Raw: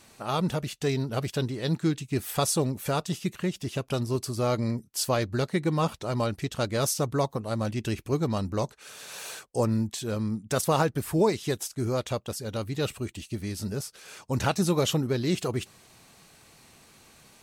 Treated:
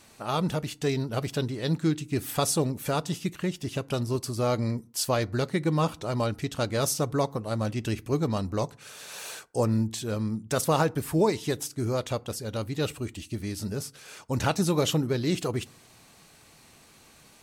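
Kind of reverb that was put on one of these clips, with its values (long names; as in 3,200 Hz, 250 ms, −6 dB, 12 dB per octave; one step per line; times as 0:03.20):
feedback delay network reverb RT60 0.45 s, low-frequency decay 1.45×, high-frequency decay 0.55×, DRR 19 dB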